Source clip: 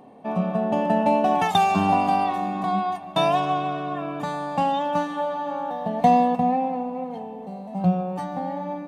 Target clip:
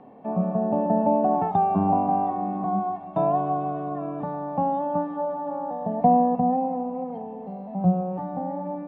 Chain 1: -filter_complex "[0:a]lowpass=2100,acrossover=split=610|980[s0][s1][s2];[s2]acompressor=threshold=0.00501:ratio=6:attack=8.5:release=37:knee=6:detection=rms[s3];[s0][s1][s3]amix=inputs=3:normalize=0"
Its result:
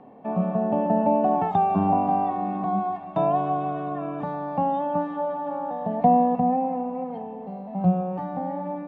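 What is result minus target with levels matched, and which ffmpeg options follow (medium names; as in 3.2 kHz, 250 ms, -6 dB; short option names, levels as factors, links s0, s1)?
compression: peak gain reduction -9.5 dB
-filter_complex "[0:a]lowpass=2100,acrossover=split=610|980[s0][s1][s2];[s2]acompressor=threshold=0.00133:ratio=6:attack=8.5:release=37:knee=6:detection=rms[s3];[s0][s1][s3]amix=inputs=3:normalize=0"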